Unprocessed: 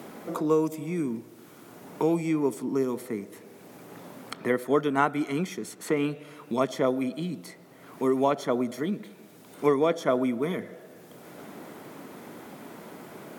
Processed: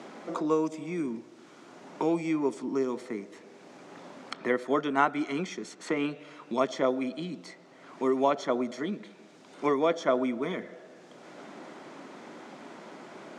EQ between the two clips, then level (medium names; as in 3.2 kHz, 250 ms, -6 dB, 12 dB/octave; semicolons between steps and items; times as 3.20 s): Bessel high-pass 260 Hz, order 2; low-pass 7 kHz 24 dB/octave; band-stop 450 Hz, Q 12; 0.0 dB